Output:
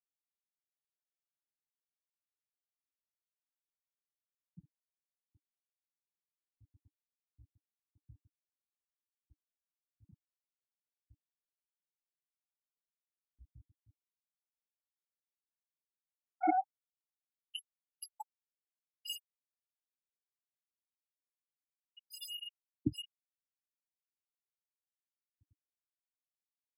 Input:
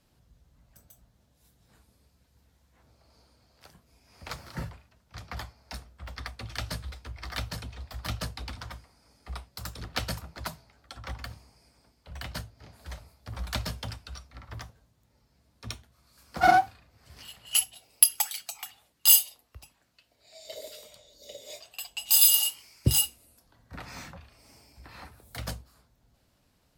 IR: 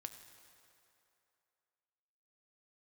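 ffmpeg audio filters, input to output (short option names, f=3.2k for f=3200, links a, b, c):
-filter_complex "[0:a]afftfilt=real='re*gte(hypot(re,im),0.224)':imag='im*gte(hypot(re,im),0.224)':win_size=1024:overlap=0.75,asplit=3[a][b][c];[a]bandpass=f=300:t=q:w=8,volume=0dB[d];[b]bandpass=f=870:t=q:w=8,volume=-6dB[e];[c]bandpass=f=2.24k:t=q:w=8,volume=-9dB[f];[d][e][f]amix=inputs=3:normalize=0,adynamicequalizer=threshold=0.002:dfrequency=490:dqfactor=0.97:tfrequency=490:tqfactor=0.97:attack=5:release=100:ratio=0.375:range=3:mode=cutabove:tftype=bell,volume=6.5dB"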